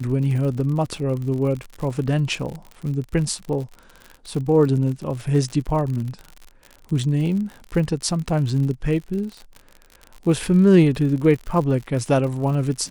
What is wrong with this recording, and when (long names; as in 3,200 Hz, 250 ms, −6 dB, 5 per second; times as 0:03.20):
surface crackle 66 per second −29 dBFS